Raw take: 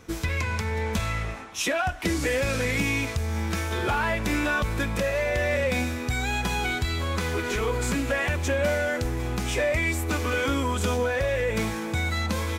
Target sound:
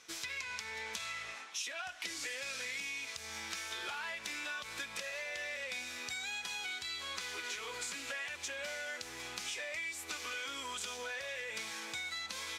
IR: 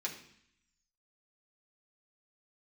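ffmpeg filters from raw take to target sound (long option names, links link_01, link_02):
-af "bandpass=frequency=4700:width_type=q:width=0.81:csg=0,acompressor=threshold=-39dB:ratio=6,volume=1dB"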